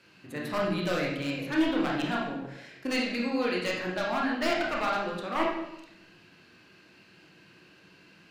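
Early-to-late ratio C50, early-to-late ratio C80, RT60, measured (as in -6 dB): 1.5 dB, 5.5 dB, 0.80 s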